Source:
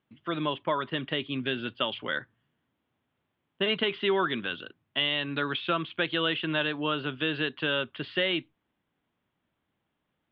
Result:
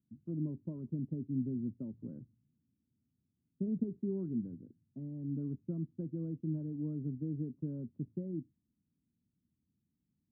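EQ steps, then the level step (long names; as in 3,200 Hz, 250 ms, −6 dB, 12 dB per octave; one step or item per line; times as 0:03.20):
high-pass filter 57 Hz
transistor ladder low-pass 290 Hz, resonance 40%
low-shelf EQ 130 Hz +11.5 dB
+1.5 dB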